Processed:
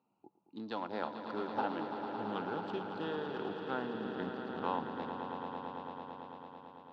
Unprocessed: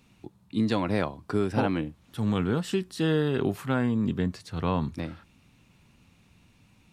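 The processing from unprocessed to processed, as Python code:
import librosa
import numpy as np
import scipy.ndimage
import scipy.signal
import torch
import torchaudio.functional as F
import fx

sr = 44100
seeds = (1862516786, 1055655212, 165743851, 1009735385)

p1 = fx.wiener(x, sr, points=25)
p2 = fx.low_shelf(p1, sr, hz=320.0, db=-8.5)
p3 = fx.rider(p2, sr, range_db=10, speed_s=0.5)
p4 = fx.cabinet(p3, sr, low_hz=240.0, low_slope=12, high_hz=4900.0, hz=(860.0, 1400.0, 2200.0), db=(9, 4, -9))
p5 = p4 + fx.echo_swell(p4, sr, ms=111, loudest=5, wet_db=-10.0, dry=0)
y = p5 * 10.0 ** (-8.0 / 20.0)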